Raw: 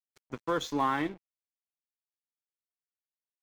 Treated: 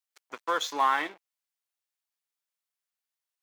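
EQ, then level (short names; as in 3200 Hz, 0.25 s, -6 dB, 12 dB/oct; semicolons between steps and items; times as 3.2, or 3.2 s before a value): HPF 730 Hz 12 dB/oct; +6.0 dB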